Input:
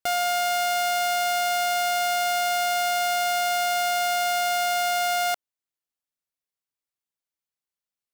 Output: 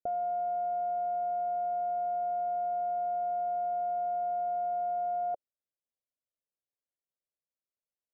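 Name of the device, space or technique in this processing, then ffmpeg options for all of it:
under water: -af "lowpass=frequency=700:width=0.5412,lowpass=frequency=700:width=1.3066,equalizer=frequency=560:width_type=o:width=0.56:gain=9,volume=-6dB"

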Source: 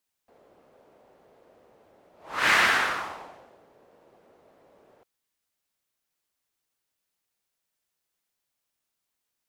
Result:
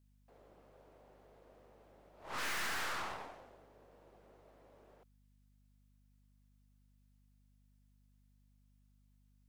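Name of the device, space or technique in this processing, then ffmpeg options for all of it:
valve amplifier with mains hum: -af "aeval=exprs='(tanh(79.4*val(0)+0.8)-tanh(0.8))/79.4':channel_layout=same,aeval=exprs='val(0)+0.000398*(sin(2*PI*50*n/s)+sin(2*PI*2*50*n/s)/2+sin(2*PI*3*50*n/s)/3+sin(2*PI*4*50*n/s)/4+sin(2*PI*5*50*n/s)/5)':channel_layout=same"

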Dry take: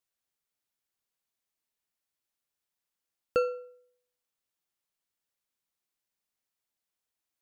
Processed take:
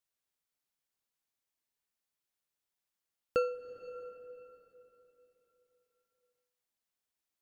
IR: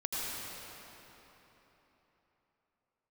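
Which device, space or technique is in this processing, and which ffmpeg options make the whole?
ducked reverb: -filter_complex "[0:a]asplit=3[link_01][link_02][link_03];[1:a]atrim=start_sample=2205[link_04];[link_02][link_04]afir=irnorm=-1:irlink=0[link_05];[link_03]apad=whole_len=326808[link_06];[link_05][link_06]sidechaincompress=threshold=-34dB:ratio=8:attack=5.8:release=401,volume=-14dB[link_07];[link_01][link_07]amix=inputs=2:normalize=0,volume=-3.5dB"

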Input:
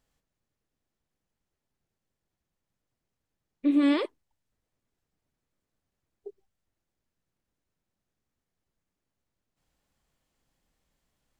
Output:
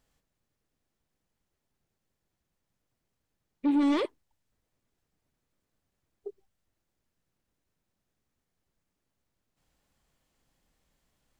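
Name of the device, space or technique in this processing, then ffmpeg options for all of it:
saturation between pre-emphasis and de-emphasis: -af "highshelf=frequency=2700:gain=11,asoftclip=type=tanh:threshold=-23dB,highshelf=frequency=2700:gain=-11,volume=2.5dB"

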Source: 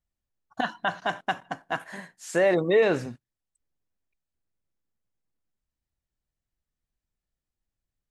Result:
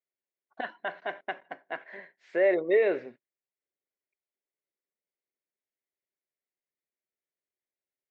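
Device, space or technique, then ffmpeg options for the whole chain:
phone earpiece: -af "highpass=340,equalizer=frequency=390:width_type=q:width=4:gain=9,equalizer=frequency=580:width_type=q:width=4:gain=6,equalizer=frequency=850:width_type=q:width=4:gain=-4,equalizer=frequency=1200:width_type=q:width=4:gain=-6,equalizer=frequency=2100:width_type=q:width=4:gain=9,equalizer=frequency=3000:width_type=q:width=4:gain=-4,lowpass=frequency=3400:width=0.5412,lowpass=frequency=3400:width=1.3066,volume=-7dB"

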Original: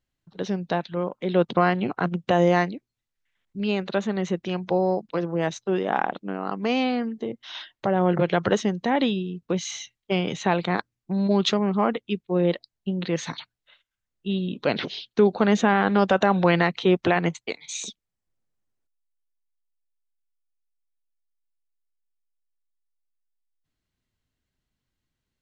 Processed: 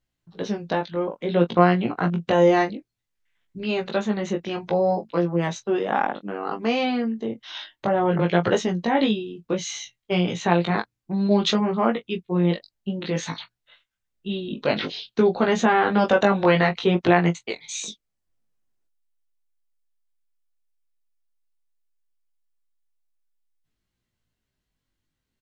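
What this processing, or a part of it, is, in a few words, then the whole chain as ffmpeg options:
double-tracked vocal: -filter_complex "[0:a]asplit=2[link_01][link_02];[link_02]adelay=23,volume=-12dB[link_03];[link_01][link_03]amix=inputs=2:normalize=0,flanger=delay=17:depth=2.6:speed=0.58,volume=4dB"

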